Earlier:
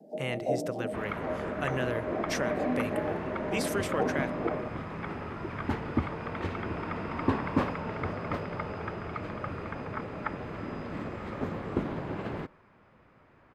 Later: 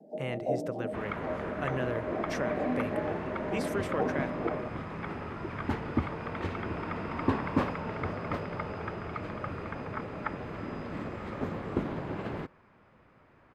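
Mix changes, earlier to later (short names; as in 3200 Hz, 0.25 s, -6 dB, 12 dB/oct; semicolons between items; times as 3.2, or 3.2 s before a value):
speech: add high shelf 2500 Hz -9.5 dB; reverb: off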